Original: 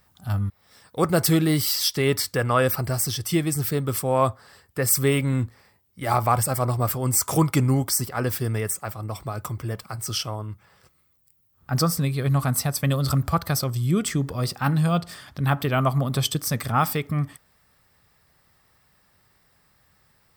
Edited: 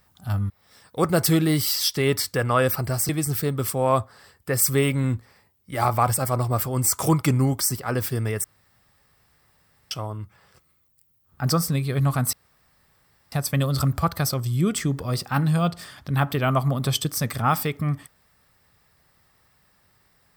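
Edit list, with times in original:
3.09–3.38 s: delete
8.73–10.20 s: room tone
12.62 s: insert room tone 0.99 s

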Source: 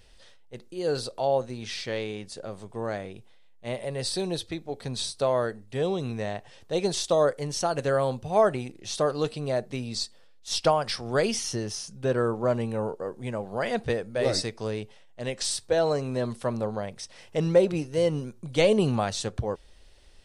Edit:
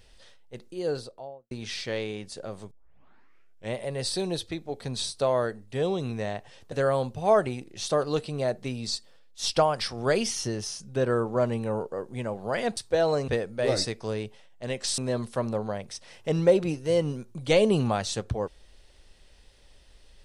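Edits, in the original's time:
0.65–1.51 s: studio fade out
2.71 s: tape start 1.04 s
6.72–7.80 s: delete
15.55–16.06 s: move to 13.85 s

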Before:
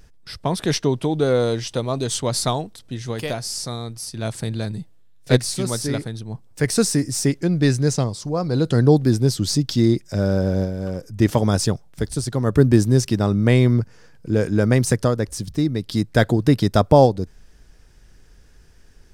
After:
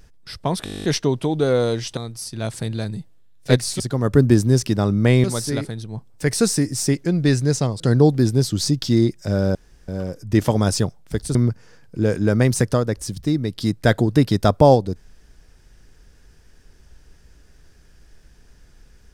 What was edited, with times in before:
0.64 s: stutter 0.02 s, 11 plays
1.77–3.78 s: delete
8.17–8.67 s: delete
10.42–10.75 s: room tone
12.22–13.66 s: move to 5.61 s

